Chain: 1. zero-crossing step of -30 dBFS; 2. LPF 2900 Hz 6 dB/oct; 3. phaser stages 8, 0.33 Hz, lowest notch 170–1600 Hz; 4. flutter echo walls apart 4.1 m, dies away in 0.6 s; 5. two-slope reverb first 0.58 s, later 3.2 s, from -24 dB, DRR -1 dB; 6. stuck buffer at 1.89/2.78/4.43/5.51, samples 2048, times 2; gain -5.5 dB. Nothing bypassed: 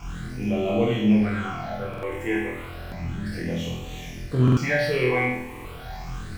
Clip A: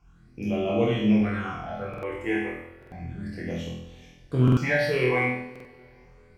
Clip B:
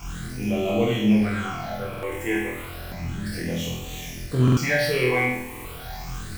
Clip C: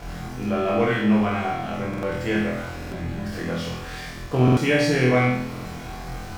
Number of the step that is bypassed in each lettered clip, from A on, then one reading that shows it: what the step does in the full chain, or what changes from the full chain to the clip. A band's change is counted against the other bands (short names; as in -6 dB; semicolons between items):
1, distortion -13 dB; 2, 8 kHz band +7.5 dB; 3, 1 kHz band +3.5 dB